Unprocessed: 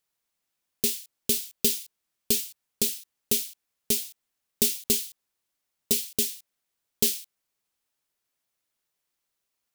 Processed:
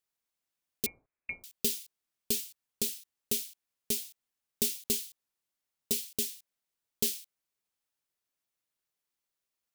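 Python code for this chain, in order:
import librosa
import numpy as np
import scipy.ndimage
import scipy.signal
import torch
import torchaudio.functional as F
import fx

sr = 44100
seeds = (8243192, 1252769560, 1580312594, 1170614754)

y = fx.freq_invert(x, sr, carrier_hz=2600, at=(0.86, 1.44))
y = y * 10.0 ** (-6.5 / 20.0)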